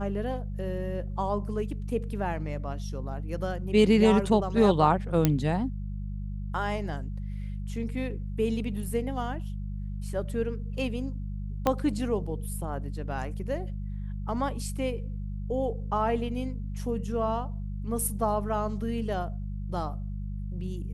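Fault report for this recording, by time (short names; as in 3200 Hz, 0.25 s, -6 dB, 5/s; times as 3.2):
hum 50 Hz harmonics 4 -34 dBFS
5.25 pop -8 dBFS
11.67 pop -11 dBFS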